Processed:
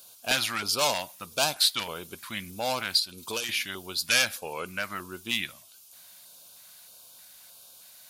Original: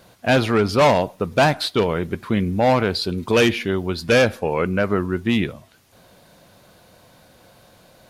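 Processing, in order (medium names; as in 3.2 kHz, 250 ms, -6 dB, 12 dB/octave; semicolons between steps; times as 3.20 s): pre-emphasis filter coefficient 0.97; 2.99–3.49 s: compression 6:1, threshold -35 dBFS, peak gain reduction 10.5 dB; LFO notch square 1.6 Hz 430–1900 Hz; trim +7.5 dB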